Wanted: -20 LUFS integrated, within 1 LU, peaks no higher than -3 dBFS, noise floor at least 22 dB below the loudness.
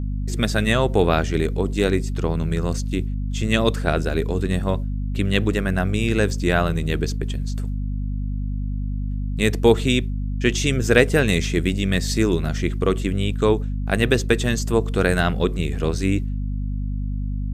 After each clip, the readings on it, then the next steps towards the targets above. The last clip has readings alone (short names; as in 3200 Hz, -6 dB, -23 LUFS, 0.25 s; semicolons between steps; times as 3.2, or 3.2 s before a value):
hum 50 Hz; harmonics up to 250 Hz; hum level -22 dBFS; loudness -22.0 LUFS; peak -1.0 dBFS; loudness target -20.0 LUFS
-> de-hum 50 Hz, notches 5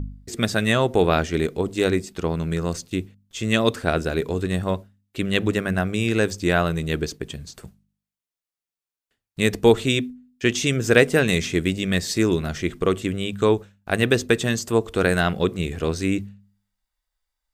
hum none; loudness -22.5 LUFS; peak -2.0 dBFS; loudness target -20.0 LUFS
-> gain +2.5 dB; limiter -3 dBFS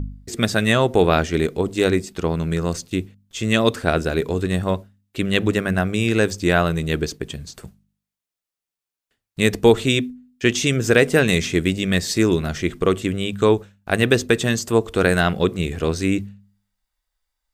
loudness -20.0 LUFS; peak -3.0 dBFS; noise floor -88 dBFS